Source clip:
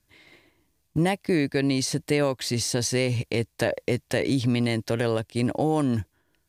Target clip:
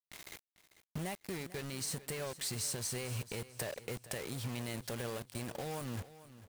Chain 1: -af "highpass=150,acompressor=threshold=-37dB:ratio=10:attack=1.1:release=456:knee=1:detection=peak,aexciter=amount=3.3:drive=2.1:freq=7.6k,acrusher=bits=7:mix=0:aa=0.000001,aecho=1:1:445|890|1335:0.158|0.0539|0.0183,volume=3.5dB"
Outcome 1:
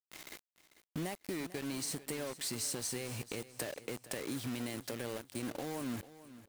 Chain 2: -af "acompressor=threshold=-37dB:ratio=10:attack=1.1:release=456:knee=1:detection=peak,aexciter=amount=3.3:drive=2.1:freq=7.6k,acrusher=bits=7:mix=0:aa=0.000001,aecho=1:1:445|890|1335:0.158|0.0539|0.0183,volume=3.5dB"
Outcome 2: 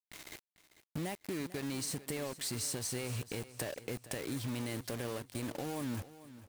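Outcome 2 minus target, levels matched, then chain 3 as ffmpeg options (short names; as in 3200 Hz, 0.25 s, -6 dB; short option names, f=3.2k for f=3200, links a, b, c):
250 Hz band +3.5 dB
-af "acompressor=threshold=-37dB:ratio=10:attack=1.1:release=456:knee=1:detection=peak,equalizer=f=290:t=o:w=0.34:g=-12,aexciter=amount=3.3:drive=2.1:freq=7.6k,acrusher=bits=7:mix=0:aa=0.000001,aecho=1:1:445|890|1335:0.158|0.0539|0.0183,volume=3.5dB"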